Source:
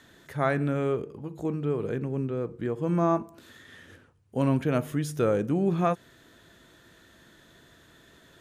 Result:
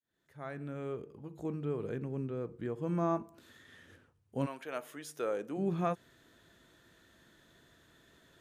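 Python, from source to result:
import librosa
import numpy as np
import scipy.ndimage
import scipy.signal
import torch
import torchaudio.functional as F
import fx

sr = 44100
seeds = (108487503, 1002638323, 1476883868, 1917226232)

y = fx.fade_in_head(x, sr, length_s=1.5)
y = fx.highpass(y, sr, hz=fx.line((4.45, 760.0), (5.57, 350.0)), slope=12, at=(4.45, 5.57), fade=0.02)
y = y * librosa.db_to_amplitude(-7.5)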